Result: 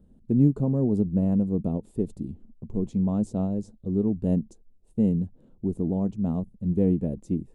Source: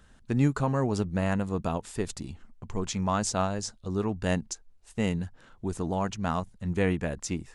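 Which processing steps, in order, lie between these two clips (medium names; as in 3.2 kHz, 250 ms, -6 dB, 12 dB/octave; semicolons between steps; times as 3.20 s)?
FFT filter 100 Hz 0 dB, 210 Hz +8 dB, 510 Hz 0 dB, 1.6 kHz -28 dB, 2.6 kHz -23 dB, 3.8 kHz -21 dB, 5.6 kHz -26 dB, 10 kHz -14 dB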